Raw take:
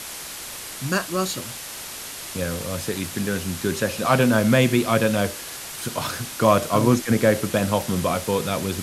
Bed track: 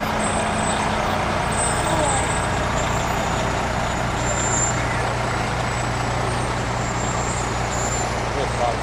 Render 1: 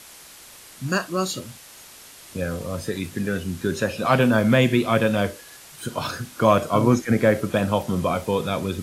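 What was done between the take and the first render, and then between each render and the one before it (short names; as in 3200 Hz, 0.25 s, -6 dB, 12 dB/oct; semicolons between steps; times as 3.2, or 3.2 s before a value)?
noise print and reduce 10 dB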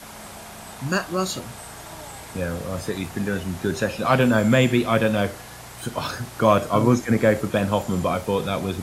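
add bed track -19.5 dB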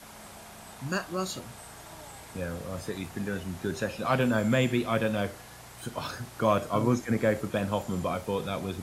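gain -7.5 dB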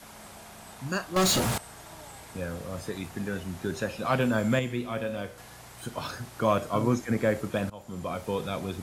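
1.16–1.58 sample leveller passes 5; 4.59–5.38 resonator 61 Hz, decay 0.65 s; 7.7–8.28 fade in, from -21.5 dB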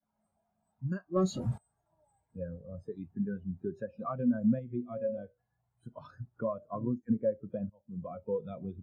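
compressor 6:1, threshold -29 dBFS, peak gain reduction 10.5 dB; spectral expander 2.5:1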